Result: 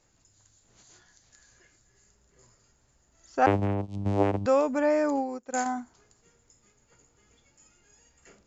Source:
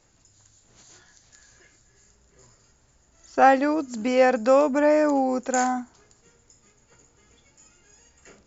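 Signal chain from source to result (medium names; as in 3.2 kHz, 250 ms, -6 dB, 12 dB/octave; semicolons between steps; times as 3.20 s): 3.46–4.46 s: vocoder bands 4, saw 99.8 Hz; 5.16–5.66 s: upward expansion 2.5:1, over -32 dBFS; trim -5 dB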